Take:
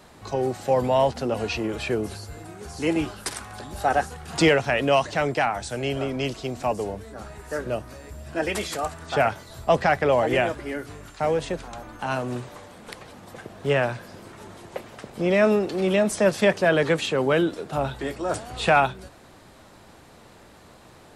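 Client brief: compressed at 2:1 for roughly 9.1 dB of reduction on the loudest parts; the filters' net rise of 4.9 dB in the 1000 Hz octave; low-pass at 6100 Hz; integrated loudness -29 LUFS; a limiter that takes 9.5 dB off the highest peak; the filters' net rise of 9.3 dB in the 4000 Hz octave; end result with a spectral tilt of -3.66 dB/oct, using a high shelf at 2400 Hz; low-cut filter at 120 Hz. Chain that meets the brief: HPF 120 Hz; LPF 6100 Hz; bell 1000 Hz +5.5 dB; high shelf 2400 Hz +7 dB; bell 4000 Hz +6.5 dB; compressor 2:1, threshold -27 dBFS; gain +1 dB; limiter -17 dBFS

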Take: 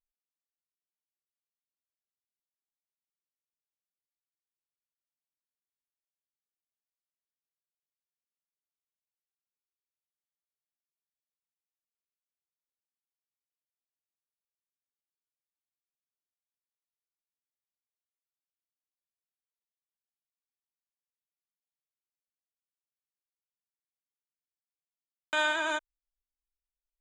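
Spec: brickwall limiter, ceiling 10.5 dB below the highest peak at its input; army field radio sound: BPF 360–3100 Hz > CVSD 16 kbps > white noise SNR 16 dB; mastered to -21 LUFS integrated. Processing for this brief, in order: limiter -28 dBFS; BPF 360–3100 Hz; CVSD 16 kbps; white noise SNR 16 dB; gain +18.5 dB

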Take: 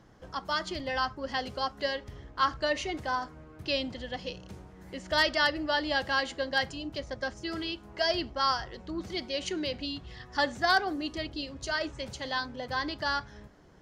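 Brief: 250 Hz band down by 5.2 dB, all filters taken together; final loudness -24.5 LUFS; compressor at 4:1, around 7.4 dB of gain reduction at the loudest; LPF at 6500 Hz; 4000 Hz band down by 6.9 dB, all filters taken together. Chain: LPF 6500 Hz; bell 250 Hz -7 dB; bell 4000 Hz -8.5 dB; compressor 4:1, threshold -30 dBFS; gain +12.5 dB

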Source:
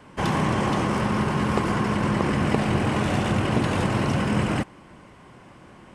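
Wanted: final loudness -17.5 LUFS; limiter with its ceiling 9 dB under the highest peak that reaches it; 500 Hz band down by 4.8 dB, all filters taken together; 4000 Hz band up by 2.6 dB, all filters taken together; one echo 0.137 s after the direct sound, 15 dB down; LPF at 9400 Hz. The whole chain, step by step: LPF 9400 Hz; bell 500 Hz -6.5 dB; bell 4000 Hz +4 dB; limiter -16.5 dBFS; echo 0.137 s -15 dB; gain +8.5 dB

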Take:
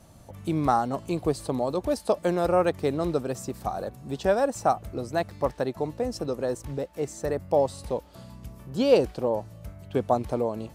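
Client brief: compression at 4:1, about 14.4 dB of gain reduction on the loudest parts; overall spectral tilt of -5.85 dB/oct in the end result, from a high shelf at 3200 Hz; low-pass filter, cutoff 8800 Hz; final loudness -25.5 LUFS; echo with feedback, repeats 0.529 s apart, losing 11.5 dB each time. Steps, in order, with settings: LPF 8800 Hz; high shelf 3200 Hz -7.5 dB; compressor 4:1, threshold -31 dBFS; feedback echo 0.529 s, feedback 27%, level -11.5 dB; gain +10 dB

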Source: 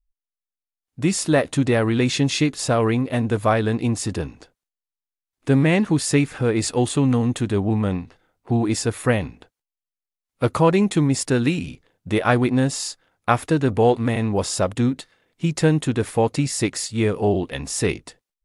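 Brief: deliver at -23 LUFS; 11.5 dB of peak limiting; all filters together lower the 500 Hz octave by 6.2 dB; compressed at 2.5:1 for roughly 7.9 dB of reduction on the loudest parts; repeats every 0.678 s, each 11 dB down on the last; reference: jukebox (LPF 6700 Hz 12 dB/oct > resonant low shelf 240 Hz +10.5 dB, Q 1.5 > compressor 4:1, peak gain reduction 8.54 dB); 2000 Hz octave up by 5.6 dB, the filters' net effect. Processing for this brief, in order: bell 500 Hz -5.5 dB; bell 2000 Hz +7.5 dB; compressor 2.5:1, threshold -24 dBFS; limiter -18.5 dBFS; LPF 6700 Hz 12 dB/oct; resonant low shelf 240 Hz +10.5 dB, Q 1.5; feedback echo 0.678 s, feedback 28%, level -11 dB; compressor 4:1, threshold -21 dBFS; gain +3.5 dB

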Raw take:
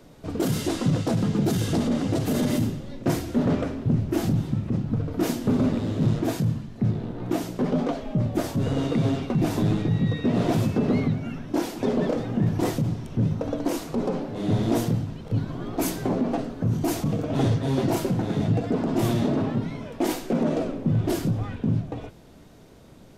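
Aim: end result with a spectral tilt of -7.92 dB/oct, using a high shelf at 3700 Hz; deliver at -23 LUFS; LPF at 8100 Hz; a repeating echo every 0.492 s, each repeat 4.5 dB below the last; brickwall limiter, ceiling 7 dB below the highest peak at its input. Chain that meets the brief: LPF 8100 Hz; high shelf 3700 Hz -5 dB; limiter -21 dBFS; feedback echo 0.492 s, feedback 60%, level -4.5 dB; gain +5 dB

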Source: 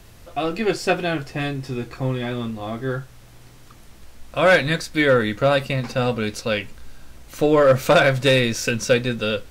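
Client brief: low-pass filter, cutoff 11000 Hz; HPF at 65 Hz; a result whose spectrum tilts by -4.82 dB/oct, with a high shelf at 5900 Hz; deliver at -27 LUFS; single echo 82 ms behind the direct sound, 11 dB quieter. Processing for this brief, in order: HPF 65 Hz; LPF 11000 Hz; high shelf 5900 Hz +3 dB; echo 82 ms -11 dB; gain -7 dB

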